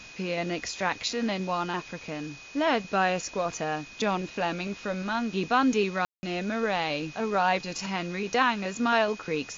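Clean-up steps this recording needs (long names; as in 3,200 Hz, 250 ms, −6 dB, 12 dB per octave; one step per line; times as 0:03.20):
notch filter 2,500 Hz, Q 30
ambience match 0:06.05–0:06.23
broadband denoise 27 dB, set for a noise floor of −45 dBFS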